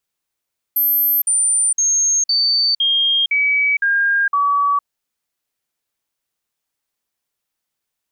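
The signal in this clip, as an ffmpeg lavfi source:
ffmpeg -f lavfi -i "aevalsrc='0.224*clip(min(mod(t,0.51),0.46-mod(t,0.51))/0.005,0,1)*sin(2*PI*12900*pow(2,-floor(t/0.51)/2)*mod(t,0.51))':duration=4.08:sample_rate=44100" out.wav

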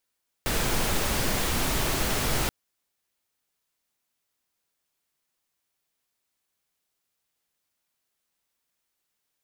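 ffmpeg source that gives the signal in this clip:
ffmpeg -f lavfi -i "anoisesrc=color=pink:amplitude=0.272:duration=2.03:sample_rate=44100:seed=1" out.wav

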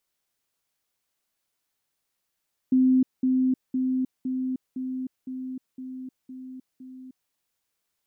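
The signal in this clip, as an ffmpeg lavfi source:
ffmpeg -f lavfi -i "aevalsrc='pow(10,(-16-3*floor(t/0.51))/20)*sin(2*PI*258*t)*clip(min(mod(t,0.51),0.31-mod(t,0.51))/0.005,0,1)':duration=4.59:sample_rate=44100" out.wav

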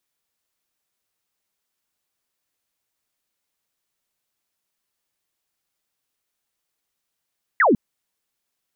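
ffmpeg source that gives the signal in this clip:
ffmpeg -f lavfi -i "aevalsrc='0.237*clip(t/0.002,0,1)*clip((0.15-t)/0.002,0,1)*sin(2*PI*2100*0.15/log(190/2100)*(exp(log(190/2100)*t/0.15)-1))':duration=0.15:sample_rate=44100" out.wav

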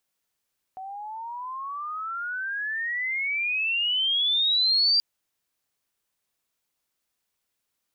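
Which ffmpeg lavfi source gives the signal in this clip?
ffmpeg -f lavfi -i "aevalsrc='pow(10,(-17.5+17*(t/4.23-1))/20)*sin(2*PI*748*4.23/(32*log(2)/12)*(exp(32*log(2)/12*t/4.23)-1))':duration=4.23:sample_rate=44100" out.wav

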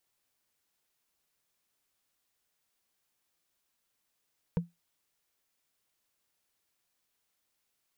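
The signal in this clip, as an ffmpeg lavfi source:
ffmpeg -f lavfi -i "aevalsrc='0.0841*pow(10,-3*t/0.18)*sin(2*PI*171*t)+0.0376*pow(10,-3*t/0.053)*sin(2*PI*471.4*t)+0.0168*pow(10,-3*t/0.024)*sin(2*PI*924.1*t)+0.0075*pow(10,-3*t/0.013)*sin(2*PI*1527.5*t)+0.00335*pow(10,-3*t/0.008)*sin(2*PI*2281.1*t)':duration=0.45:sample_rate=44100" out.wav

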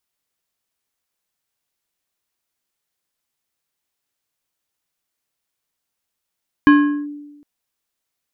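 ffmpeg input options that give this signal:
ffmpeg -f lavfi -i "aevalsrc='0.596*pow(10,-3*t/1.11)*sin(2*PI*292*t+0.67*clip(1-t/0.4,0,1)*sin(2*PI*4.67*292*t))':duration=0.76:sample_rate=44100" out.wav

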